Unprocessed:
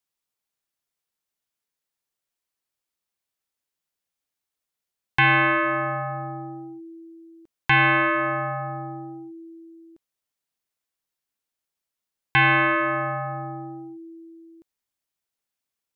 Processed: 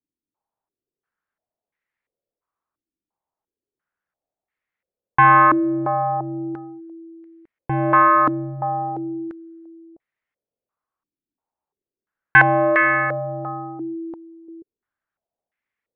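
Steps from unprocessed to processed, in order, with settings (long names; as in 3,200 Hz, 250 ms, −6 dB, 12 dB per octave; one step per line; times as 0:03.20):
low-pass on a step sequencer 2.9 Hz 300–2,000 Hz
level +1.5 dB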